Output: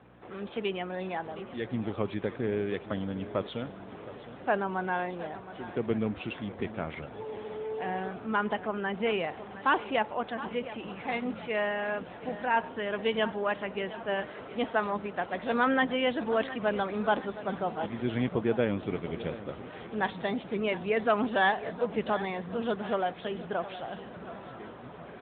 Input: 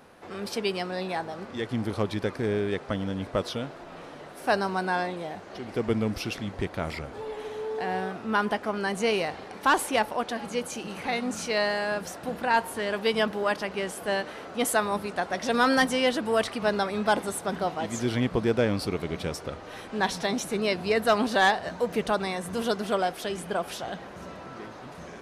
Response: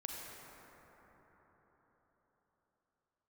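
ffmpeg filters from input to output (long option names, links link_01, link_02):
-filter_complex "[0:a]adynamicequalizer=threshold=0.00398:dfrequency=110:dqfactor=3.8:tfrequency=110:tqfactor=3.8:attack=5:release=100:ratio=0.375:range=1.5:mode=cutabove:tftype=bell,aeval=exprs='val(0)+0.00282*(sin(2*PI*60*n/s)+sin(2*PI*2*60*n/s)/2+sin(2*PI*3*60*n/s)/3+sin(2*PI*4*60*n/s)/4+sin(2*PI*5*60*n/s)/5)':channel_layout=same,asplit=2[link_01][link_02];[link_02]aecho=0:1:716|1432|2148|2864|3580:0.188|0.0979|0.0509|0.0265|0.0138[link_03];[link_01][link_03]amix=inputs=2:normalize=0,volume=-3dB" -ar 8000 -c:a libopencore_amrnb -b:a 10200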